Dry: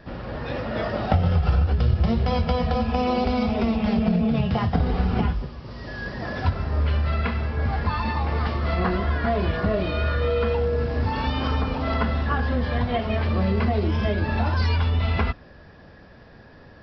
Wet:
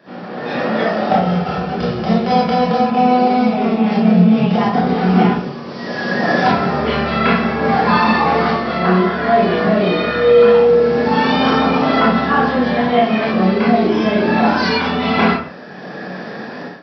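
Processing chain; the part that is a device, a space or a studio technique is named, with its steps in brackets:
far laptop microphone (convolution reverb RT60 0.50 s, pre-delay 22 ms, DRR −5 dB; high-pass filter 180 Hz 24 dB per octave; automatic gain control gain up to 16.5 dB)
0:02.90–0:03.92: high-frequency loss of the air 110 metres
level −1 dB

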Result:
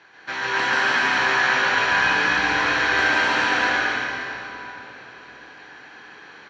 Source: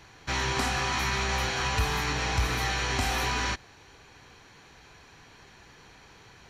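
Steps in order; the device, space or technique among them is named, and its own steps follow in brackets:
station announcement (band-pass filter 310–4,100 Hz; parametric band 1,600 Hz +10 dB 0.26 octaves; loudspeakers that aren't time-aligned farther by 48 metres −1 dB, 70 metres −11 dB, 87 metres −3 dB; convolution reverb RT60 3.5 s, pre-delay 115 ms, DRR −3 dB)
low-pass filter 7,900 Hz 12 dB per octave

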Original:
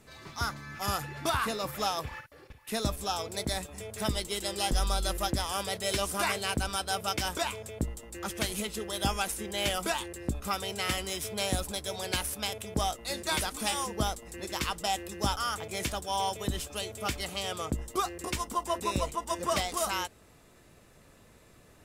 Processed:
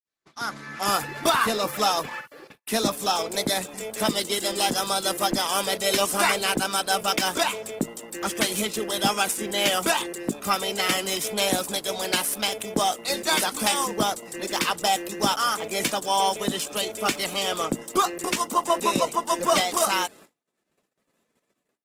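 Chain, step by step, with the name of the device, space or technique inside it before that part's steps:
video call (high-pass filter 180 Hz 24 dB per octave; automatic gain control gain up to 12.5 dB; noise gate −43 dBFS, range −41 dB; level −3.5 dB; Opus 16 kbit/s 48,000 Hz)

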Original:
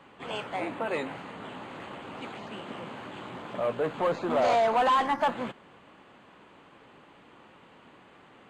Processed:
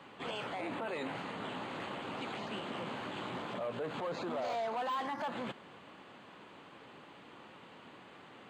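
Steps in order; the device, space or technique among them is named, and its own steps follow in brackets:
broadcast voice chain (high-pass filter 80 Hz; de-essing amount 90%; downward compressor, threshold −27 dBFS, peak gain reduction 6 dB; parametric band 4,200 Hz +4 dB 0.9 octaves; brickwall limiter −30.5 dBFS, peak gain reduction 10.5 dB)

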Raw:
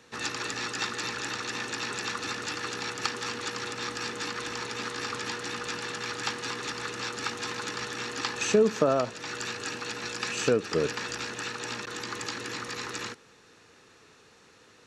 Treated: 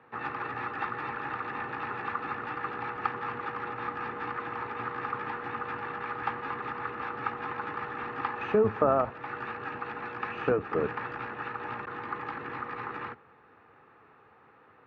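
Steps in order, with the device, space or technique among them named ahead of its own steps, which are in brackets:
sub-octave bass pedal (sub-octave generator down 1 octave, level −3 dB; loudspeaker in its box 83–2,200 Hz, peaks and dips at 180 Hz −5 dB, 810 Hz +9 dB, 1,200 Hz +7 dB)
level −2.5 dB

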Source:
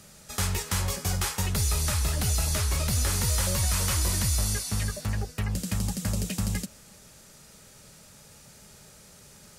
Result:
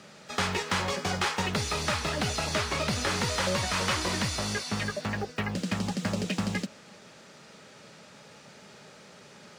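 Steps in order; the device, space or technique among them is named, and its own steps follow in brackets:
early digital voice recorder (band-pass filter 210–3,700 Hz; one scale factor per block 7 bits)
level +6 dB

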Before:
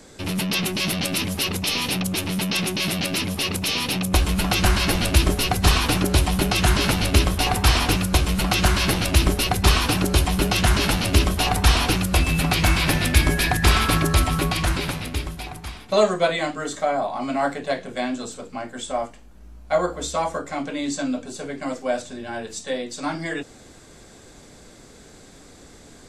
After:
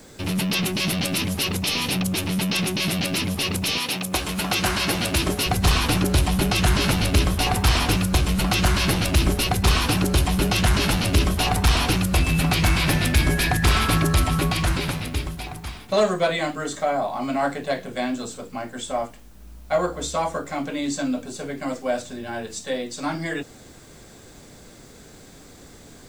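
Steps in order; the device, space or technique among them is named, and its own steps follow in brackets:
0:03.77–0:05.45: high-pass filter 460 Hz → 140 Hz 6 dB per octave
open-reel tape (soft clipping −10.5 dBFS, distortion −17 dB; parametric band 130 Hz +3 dB 1.17 octaves; white noise bed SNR 37 dB)

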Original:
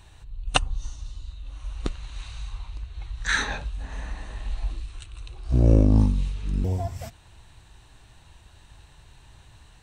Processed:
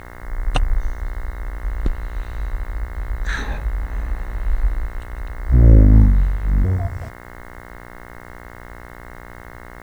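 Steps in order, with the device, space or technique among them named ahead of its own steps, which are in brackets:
spectral tilt −2.5 dB per octave
video cassette with head-switching buzz (hum with harmonics 60 Hz, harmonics 36, −38 dBFS −1 dB per octave; white noise bed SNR 39 dB)
level −1.5 dB

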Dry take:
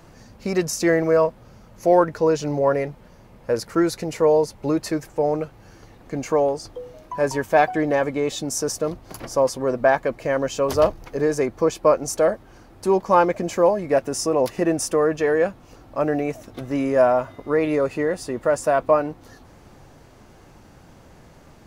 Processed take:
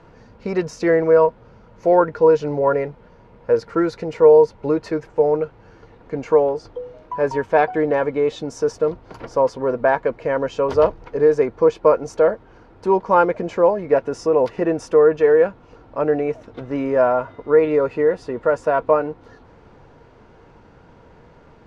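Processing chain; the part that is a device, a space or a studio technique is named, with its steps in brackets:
inside a cardboard box (low-pass filter 3,400 Hz 12 dB per octave; hollow resonant body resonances 460/950/1,400 Hz, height 9 dB)
level −1 dB

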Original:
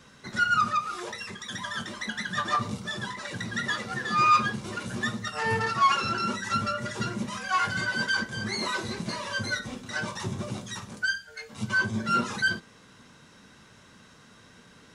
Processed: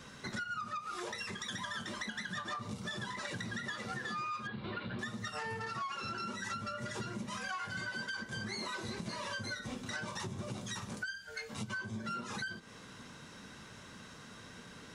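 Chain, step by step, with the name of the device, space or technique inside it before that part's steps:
0:04.47–0:04.99: elliptic low-pass filter 4,100 Hz, stop band 40 dB
serial compression, peaks first (downward compressor, threshold −33 dBFS, peak gain reduction 15.5 dB; downward compressor 2.5 to 1, threshold −42 dBFS, peak gain reduction 8 dB)
level +2 dB

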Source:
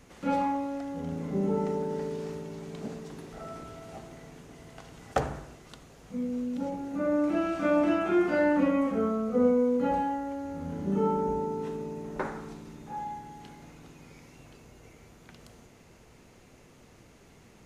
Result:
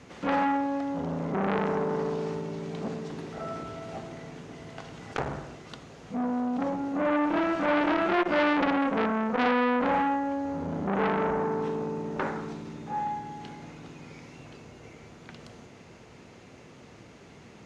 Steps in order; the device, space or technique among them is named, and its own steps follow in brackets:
valve radio (band-pass filter 84–5,600 Hz; tube saturation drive 17 dB, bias 0.3; saturating transformer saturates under 1,600 Hz)
level +7 dB

